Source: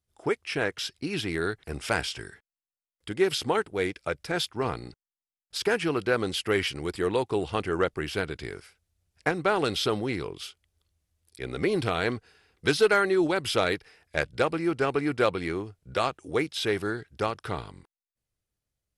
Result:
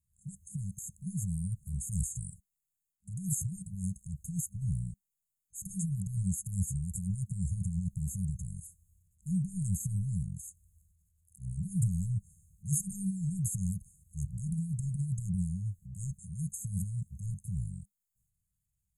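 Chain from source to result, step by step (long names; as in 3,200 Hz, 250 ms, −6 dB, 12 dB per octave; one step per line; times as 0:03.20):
transient designer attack −7 dB, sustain +7 dB
brick-wall band-stop 200–6,400 Hz
level +3.5 dB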